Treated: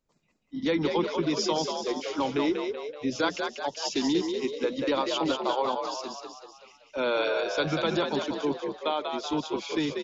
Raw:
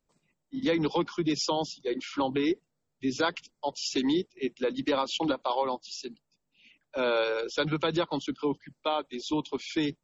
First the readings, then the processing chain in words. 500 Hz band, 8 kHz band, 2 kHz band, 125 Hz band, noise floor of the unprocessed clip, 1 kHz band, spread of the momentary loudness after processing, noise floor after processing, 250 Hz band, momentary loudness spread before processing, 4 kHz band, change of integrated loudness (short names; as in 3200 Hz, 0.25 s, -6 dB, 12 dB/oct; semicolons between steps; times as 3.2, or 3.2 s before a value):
+2.0 dB, n/a, +2.0 dB, 0.0 dB, -81 dBFS, +2.0 dB, 6 LU, -67 dBFS, +1.0 dB, 8 LU, +1.5 dB, +1.5 dB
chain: frequency-shifting echo 0.19 s, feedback 51%, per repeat +55 Hz, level -5 dB; downsampling 16000 Hz